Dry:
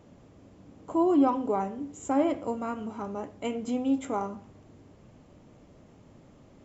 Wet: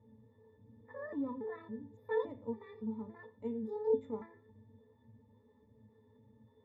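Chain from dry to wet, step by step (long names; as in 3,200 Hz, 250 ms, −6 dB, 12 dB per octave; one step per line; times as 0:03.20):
pitch shifter gated in a rhythm +9 semitones, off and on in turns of 281 ms
resonances in every octave A, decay 0.15 s
level +1 dB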